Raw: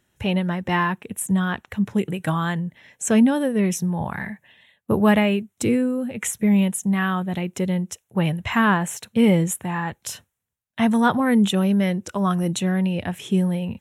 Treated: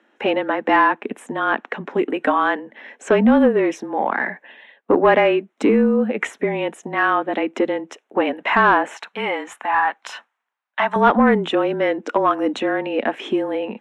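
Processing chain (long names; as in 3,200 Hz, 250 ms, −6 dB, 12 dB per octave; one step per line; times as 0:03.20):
in parallel at +1 dB: downward compressor, threshold −27 dBFS, peak gain reduction 14 dB
on the sum: elliptic high-pass filter 270 Hz, stop band 40 dB
0:08.94–0:10.96: low shelf with overshoot 650 Hz −12 dB, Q 1.5
frequency shifter −29 Hz
soft clipping −12 dBFS, distortion −19 dB
low-pass filter 2,100 Hz 12 dB per octave
level +7 dB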